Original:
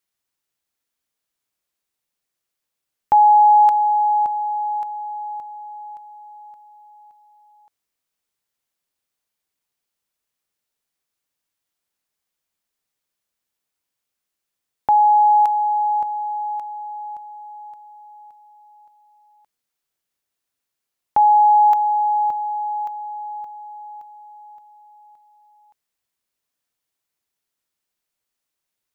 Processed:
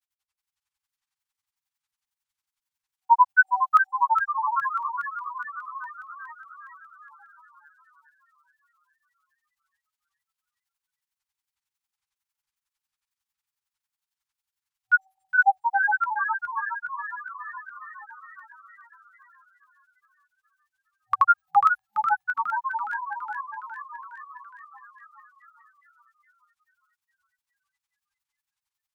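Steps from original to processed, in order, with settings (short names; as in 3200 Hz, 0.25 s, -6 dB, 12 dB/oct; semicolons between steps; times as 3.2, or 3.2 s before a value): grains 67 ms, grains 11/s, pitch spread up and down by 12 st; FFT band-reject 110–760 Hz; frequency-shifting echo 0.414 s, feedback 61%, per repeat +50 Hz, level -7 dB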